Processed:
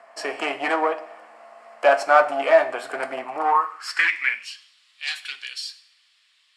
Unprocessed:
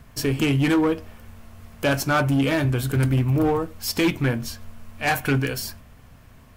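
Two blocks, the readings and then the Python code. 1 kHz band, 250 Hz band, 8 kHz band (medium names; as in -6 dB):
+7.5 dB, -16.0 dB, -8.0 dB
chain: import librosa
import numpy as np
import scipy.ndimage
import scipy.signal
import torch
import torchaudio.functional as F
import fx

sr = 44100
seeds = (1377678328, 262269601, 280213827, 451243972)

y = fx.cabinet(x, sr, low_hz=190.0, low_slope=24, high_hz=7800.0, hz=(1200.0, 1900.0, 3600.0, 6200.0), db=(5, 5, -8, -10))
y = fx.rev_double_slope(y, sr, seeds[0], early_s=0.62, late_s=1.8, knee_db=-18, drr_db=11.5)
y = fx.filter_sweep_highpass(y, sr, from_hz=680.0, to_hz=3600.0, start_s=3.24, end_s=4.73, q=6.0)
y = y * librosa.db_to_amplitude(-1.0)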